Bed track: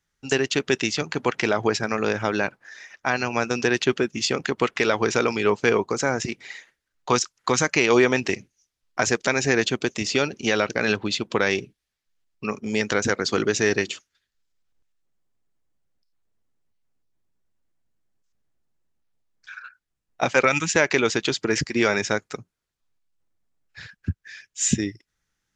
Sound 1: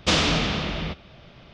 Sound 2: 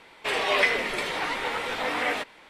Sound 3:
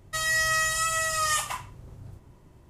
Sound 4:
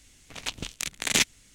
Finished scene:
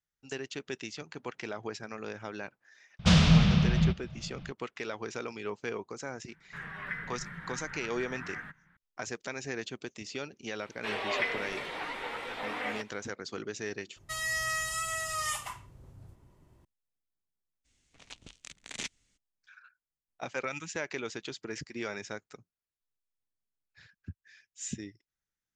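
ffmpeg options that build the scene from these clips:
-filter_complex "[2:a]asplit=2[a][b];[0:a]volume=-16.5dB[c];[1:a]lowshelf=f=230:t=q:w=3:g=9[d];[a]firequalizer=gain_entry='entry(110,0);entry(160,11);entry(240,-12);entry(410,-24);entry(600,-26);entry(1600,-2);entry(2400,-22);entry(4400,-30);entry(7500,-29);entry(12000,-23)':delay=0.05:min_phase=1[e];[b]acrossover=split=4100[f][g];[g]acompressor=threshold=-47dB:ratio=4:attack=1:release=60[h];[f][h]amix=inputs=2:normalize=0[i];[4:a]lowpass=f=8.5k:w=0.5412,lowpass=f=8.5k:w=1.3066[j];[d]atrim=end=1.53,asetpts=PTS-STARTPTS,volume=-6.5dB,afade=t=in:d=0.004:c=hsin,afade=t=out:st=1.526:d=0.004:c=hsin,adelay=2990[k];[e]atrim=end=2.49,asetpts=PTS-STARTPTS,volume=-3.5dB,afade=t=in:d=0.004:c=hsin,afade=t=out:st=2.486:d=0.004:c=hsin,adelay=6280[l];[i]atrim=end=2.49,asetpts=PTS-STARTPTS,volume=-8.5dB,afade=t=in:d=0.004:c=hsin,afade=t=out:st=2.486:d=0.004:c=hsin,adelay=10590[m];[3:a]atrim=end=2.69,asetpts=PTS-STARTPTS,volume=-7.5dB,afade=t=in:d=0.004:c=hsin,afade=t=out:st=2.686:d=0.004:c=hsin,adelay=615636S[n];[j]atrim=end=1.54,asetpts=PTS-STARTPTS,volume=-15.5dB,afade=t=in:d=0.02,afade=t=out:st=1.52:d=0.02,adelay=777924S[o];[c][k][l][m][n][o]amix=inputs=6:normalize=0"

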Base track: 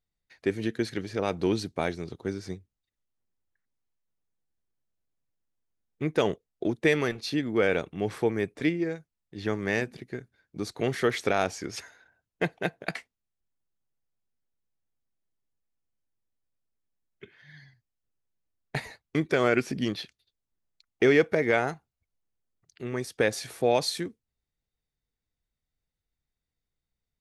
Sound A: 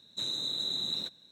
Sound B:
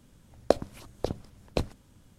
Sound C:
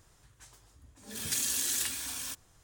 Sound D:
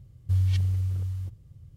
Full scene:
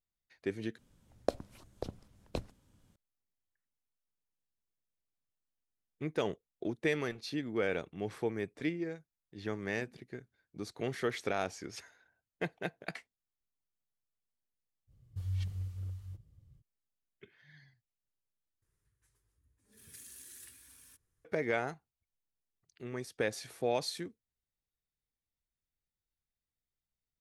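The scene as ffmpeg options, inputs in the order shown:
-filter_complex "[0:a]volume=-8.5dB[a];[4:a]flanger=delay=2.9:depth=4.2:regen=-50:speed=2:shape=triangular[b];[3:a]firequalizer=gain_entry='entry(100,0);entry(260,-6);entry(410,-1);entry(690,-15);entry(990,-9);entry(1800,-3);entry(3100,-9);entry(7500,-8);entry(11000,3);entry(16000,-11)':delay=0.05:min_phase=1[c];[a]asplit=3[d][e][f];[d]atrim=end=0.784[g];[2:a]atrim=end=2.18,asetpts=PTS-STARTPTS,volume=-9.5dB[h];[e]atrim=start=2.956:end=18.624[i];[c]atrim=end=2.63,asetpts=PTS-STARTPTS,volume=-16.5dB[j];[f]atrim=start=21.246[k];[b]atrim=end=1.76,asetpts=PTS-STARTPTS,volume=-6.5dB,afade=t=in:d=0.05,afade=t=out:st=1.71:d=0.05,adelay=14870[l];[g][h]acrossfade=d=0.004:c1=hsin:c2=hsin[m];[m][i]acrossfade=d=0.004:c1=hsin:c2=hsin[n];[n][j]acrossfade=d=0.004:c1=hsin:c2=hsin[o];[o][k]acrossfade=d=0.004:c1=hsin:c2=hsin[p];[p][l]amix=inputs=2:normalize=0"

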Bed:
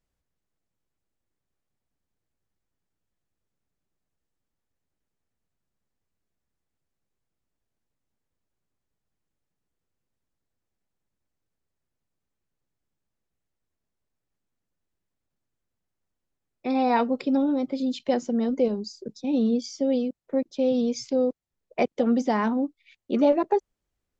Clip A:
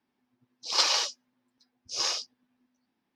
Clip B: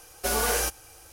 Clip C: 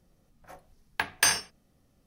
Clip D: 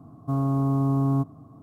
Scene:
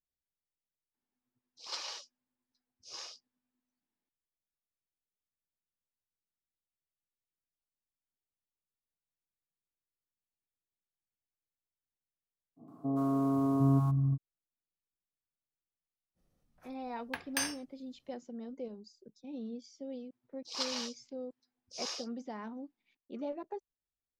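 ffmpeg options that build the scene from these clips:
-filter_complex "[1:a]asplit=2[a][b];[0:a]volume=-19dB[c];[a]highshelf=f=12k:g=-4.5[d];[4:a]acrossover=split=190|760[e][f][g];[g]adelay=120[h];[e]adelay=760[i];[i][f][h]amix=inputs=3:normalize=0[j];[b]alimiter=limit=-10.5dB:level=0:latency=1:release=422[k];[d]atrim=end=3.15,asetpts=PTS-STARTPTS,volume=-16dB,afade=t=in:d=0.004:c=hsin,afade=t=out:st=3.146:d=0.004:c=hsin,adelay=940[l];[j]atrim=end=1.62,asetpts=PTS-STARTPTS,volume=-1.5dB,afade=t=in:d=0.05,afade=t=out:st=1.57:d=0.05,adelay=12560[m];[3:a]atrim=end=2.06,asetpts=PTS-STARTPTS,volume=-11dB,afade=t=in:d=0.05,afade=t=out:st=2.01:d=0.05,adelay=16140[n];[k]atrim=end=3.15,asetpts=PTS-STARTPTS,volume=-11dB,afade=t=in:d=0.004:c=hsin,afade=t=out:st=3.146:d=0.004:c=hsin,adelay=19820[o];[c][l][m][n][o]amix=inputs=5:normalize=0"

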